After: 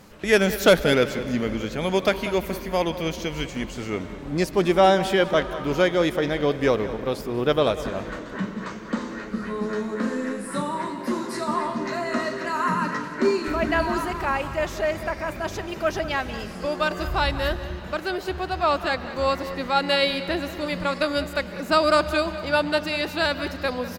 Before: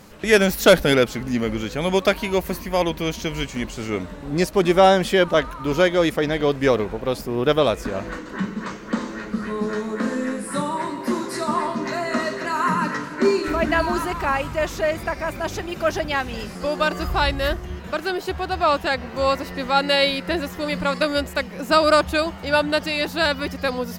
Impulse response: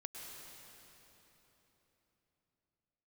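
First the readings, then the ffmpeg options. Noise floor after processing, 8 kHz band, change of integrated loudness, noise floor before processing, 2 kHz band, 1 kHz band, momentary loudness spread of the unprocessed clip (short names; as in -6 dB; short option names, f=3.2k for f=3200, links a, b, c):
-36 dBFS, -4.5 dB, -2.5 dB, -36 dBFS, -2.5 dB, -2.5 dB, 11 LU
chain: -filter_complex "[0:a]asplit=2[a][b];[b]adelay=192.4,volume=-14dB,highshelf=f=4k:g=-4.33[c];[a][c]amix=inputs=2:normalize=0,asplit=2[d][e];[1:a]atrim=start_sample=2205,lowpass=7k[f];[e][f]afir=irnorm=-1:irlink=0,volume=-7.5dB[g];[d][g]amix=inputs=2:normalize=0,volume=-4.5dB"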